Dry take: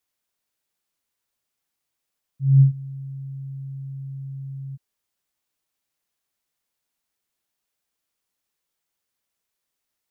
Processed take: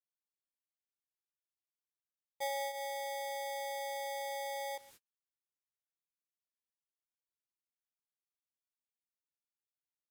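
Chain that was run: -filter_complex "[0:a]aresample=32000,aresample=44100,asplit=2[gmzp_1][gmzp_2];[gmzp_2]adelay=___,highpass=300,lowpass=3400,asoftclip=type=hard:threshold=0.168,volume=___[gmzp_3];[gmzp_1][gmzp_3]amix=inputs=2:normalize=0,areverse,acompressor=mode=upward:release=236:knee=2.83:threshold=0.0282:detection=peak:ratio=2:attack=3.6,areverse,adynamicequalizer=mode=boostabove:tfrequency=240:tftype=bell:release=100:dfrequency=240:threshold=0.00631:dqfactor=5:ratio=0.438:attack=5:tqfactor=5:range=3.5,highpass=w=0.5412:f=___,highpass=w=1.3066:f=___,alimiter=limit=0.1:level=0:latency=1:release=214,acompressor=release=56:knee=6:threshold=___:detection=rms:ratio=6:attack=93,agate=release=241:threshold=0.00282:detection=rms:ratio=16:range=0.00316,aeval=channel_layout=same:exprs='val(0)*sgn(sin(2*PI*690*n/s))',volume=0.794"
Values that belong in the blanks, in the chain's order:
130, 0.0447, 130, 130, 0.0126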